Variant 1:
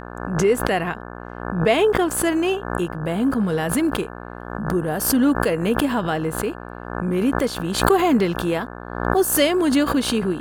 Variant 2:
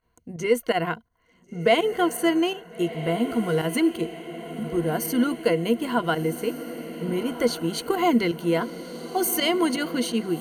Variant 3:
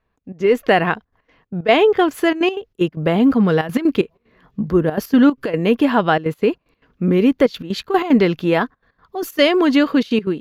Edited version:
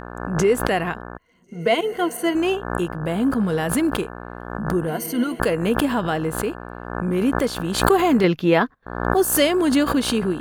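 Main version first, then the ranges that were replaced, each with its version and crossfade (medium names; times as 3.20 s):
1
1.18–2.35 s: from 2
4.88–5.40 s: from 2
8.24–8.86 s: from 3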